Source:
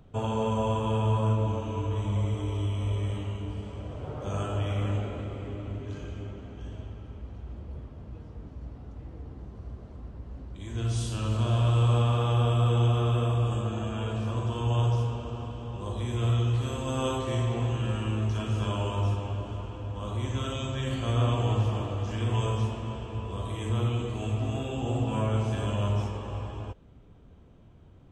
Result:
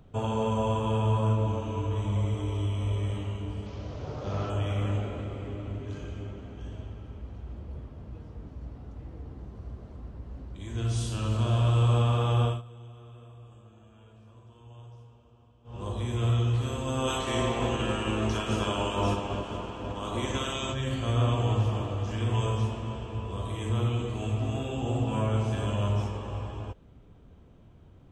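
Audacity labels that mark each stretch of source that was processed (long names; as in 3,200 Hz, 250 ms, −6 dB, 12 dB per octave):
3.660000	4.500000	linear delta modulator 32 kbit/s, step −46.5 dBFS
12.440000	15.820000	duck −23 dB, fades 0.18 s
17.070000	20.720000	ceiling on every frequency bin ceiling under each frame's peak by 15 dB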